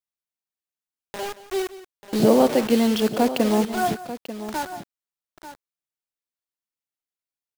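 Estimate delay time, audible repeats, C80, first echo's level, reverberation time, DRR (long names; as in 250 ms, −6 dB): 175 ms, 2, no reverb audible, −16.0 dB, no reverb audible, no reverb audible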